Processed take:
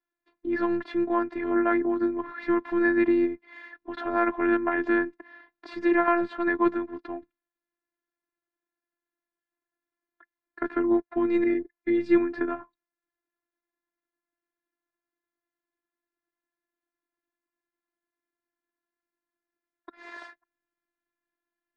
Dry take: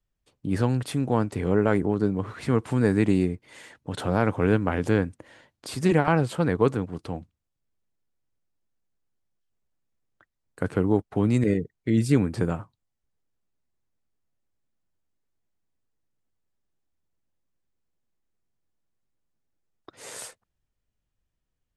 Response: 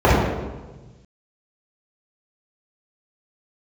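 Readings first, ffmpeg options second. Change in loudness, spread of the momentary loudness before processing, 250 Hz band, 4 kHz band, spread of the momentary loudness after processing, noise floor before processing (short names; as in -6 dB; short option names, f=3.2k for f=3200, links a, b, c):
-1.0 dB, 15 LU, -0.5 dB, n/a, 17 LU, -81 dBFS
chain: -af "highpass=230,equalizer=f=250:t=q:w=4:g=8,equalizer=f=510:t=q:w=4:g=-9,equalizer=f=940:t=q:w=4:g=4,equalizer=f=1.7k:t=q:w=4:g=9,equalizer=f=3k:t=q:w=4:g=-10,lowpass=f=3.4k:w=0.5412,lowpass=f=3.4k:w=1.3066,afftfilt=real='hypot(re,im)*cos(PI*b)':imag='0':win_size=512:overlap=0.75,volume=3dB"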